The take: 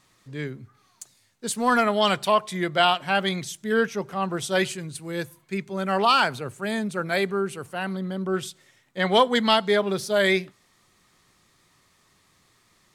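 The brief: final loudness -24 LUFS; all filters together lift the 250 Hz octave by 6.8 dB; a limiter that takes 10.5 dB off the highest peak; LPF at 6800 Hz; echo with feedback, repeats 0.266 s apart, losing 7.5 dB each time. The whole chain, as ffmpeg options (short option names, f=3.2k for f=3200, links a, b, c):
-af "lowpass=6.8k,equalizer=f=250:t=o:g=9,alimiter=limit=-15dB:level=0:latency=1,aecho=1:1:266|532|798|1064|1330:0.422|0.177|0.0744|0.0312|0.0131,volume=1.5dB"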